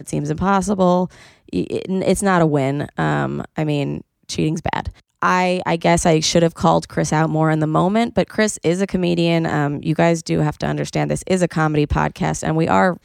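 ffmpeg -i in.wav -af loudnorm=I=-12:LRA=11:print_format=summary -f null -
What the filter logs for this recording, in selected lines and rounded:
Input Integrated:    -18.8 LUFS
Input True Peak:      -1.6 dBTP
Input LRA:             2.8 LU
Input Threshold:     -28.8 LUFS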